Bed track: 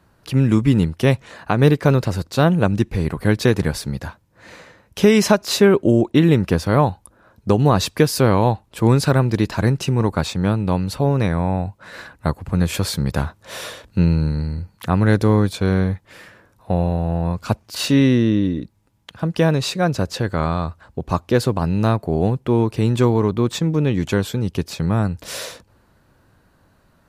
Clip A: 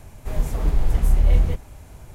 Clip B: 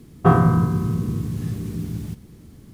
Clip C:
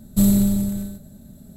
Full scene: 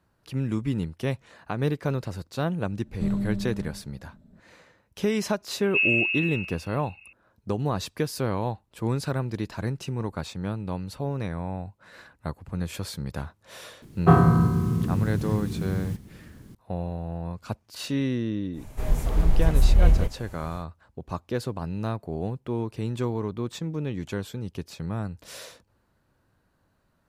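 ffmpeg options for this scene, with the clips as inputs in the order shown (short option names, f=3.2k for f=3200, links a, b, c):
-filter_complex "[3:a]asplit=2[a][b];[0:a]volume=-12dB[c];[a]lowpass=2.5k[d];[b]lowpass=f=2.4k:t=q:w=0.5098,lowpass=f=2.4k:t=q:w=0.6013,lowpass=f=2.4k:t=q:w=0.9,lowpass=f=2.4k:t=q:w=2.563,afreqshift=-2800[e];[d]atrim=end=1.56,asetpts=PTS-STARTPTS,volume=-10.5dB,afade=t=in:d=0.004:c=hsin,afade=t=out:st=1.556:d=0.004:c=hsin,adelay=2840[f];[e]atrim=end=1.56,asetpts=PTS-STARTPTS,volume=-7.5dB,afade=t=in:d=0.004:c=hsin,afade=t=out:st=1.556:d=0.004:c=hsin,adelay=245637S[g];[2:a]atrim=end=2.73,asetpts=PTS-STARTPTS,volume=-2dB,afade=t=in:d=0.004:c=hsin,afade=t=out:st=2.726:d=0.004:c=hsin,adelay=13820[h];[1:a]atrim=end=2.14,asetpts=PTS-STARTPTS,volume=-1dB,afade=t=in:d=0.1,afade=t=out:st=2.04:d=0.1,adelay=18520[i];[c][f][g][h][i]amix=inputs=5:normalize=0"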